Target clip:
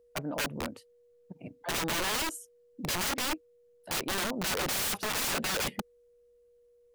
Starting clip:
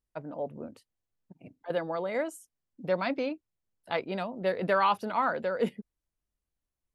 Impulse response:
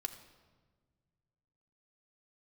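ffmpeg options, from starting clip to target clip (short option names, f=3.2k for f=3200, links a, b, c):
-af "aeval=exprs='(mod(37.6*val(0)+1,2)-1)/37.6':c=same,aeval=exprs='val(0)+0.000501*sin(2*PI*480*n/s)':c=same,volume=5.5dB"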